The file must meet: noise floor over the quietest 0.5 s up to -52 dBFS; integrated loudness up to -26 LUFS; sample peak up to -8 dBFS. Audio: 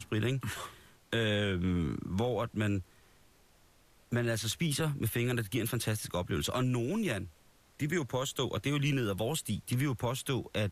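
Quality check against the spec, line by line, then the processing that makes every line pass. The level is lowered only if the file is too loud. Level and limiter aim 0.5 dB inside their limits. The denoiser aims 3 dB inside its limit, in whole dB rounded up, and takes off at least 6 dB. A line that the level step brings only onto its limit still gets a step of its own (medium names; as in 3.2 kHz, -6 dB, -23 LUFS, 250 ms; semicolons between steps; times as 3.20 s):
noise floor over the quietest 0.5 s -63 dBFS: pass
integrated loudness -33.0 LUFS: pass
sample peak -20.0 dBFS: pass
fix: none needed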